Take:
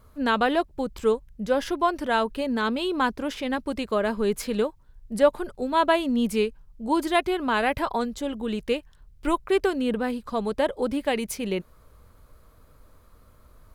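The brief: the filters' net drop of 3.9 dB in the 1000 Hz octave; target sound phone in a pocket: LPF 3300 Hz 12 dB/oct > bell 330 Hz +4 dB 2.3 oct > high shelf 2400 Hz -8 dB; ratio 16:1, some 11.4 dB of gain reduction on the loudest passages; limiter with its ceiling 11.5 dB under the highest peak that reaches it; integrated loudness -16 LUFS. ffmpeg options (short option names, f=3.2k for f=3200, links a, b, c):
-af "equalizer=f=1k:t=o:g=-5.5,acompressor=threshold=-25dB:ratio=16,alimiter=level_in=2.5dB:limit=-24dB:level=0:latency=1,volume=-2.5dB,lowpass=3.3k,equalizer=f=330:t=o:w=2.3:g=4,highshelf=f=2.4k:g=-8,volume=17dB"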